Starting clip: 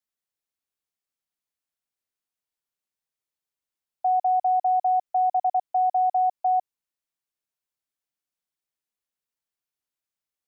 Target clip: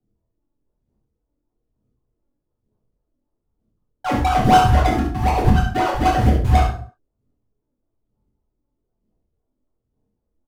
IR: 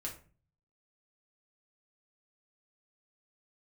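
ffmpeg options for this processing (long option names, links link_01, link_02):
-filter_complex "[0:a]equalizer=frequency=520:width=5.4:gain=-8.5,alimiter=level_in=3.5dB:limit=-24dB:level=0:latency=1,volume=-3.5dB,acrusher=samples=37:mix=1:aa=0.000001:lfo=1:lforange=37:lforate=3.9,aphaser=in_gain=1:out_gain=1:delay=3.6:decay=0.62:speed=1.1:type=sinusoidal,adynamicsmooth=sensitivity=3:basefreq=590,acrusher=bits=6:mode=log:mix=0:aa=0.000001,aecho=1:1:24|69:0.501|0.447[link_01];[1:a]atrim=start_sample=2205,afade=type=out:start_time=0.27:duration=0.01,atrim=end_sample=12348,asetrate=30870,aresample=44100[link_02];[link_01][link_02]afir=irnorm=-1:irlink=0,volume=9dB"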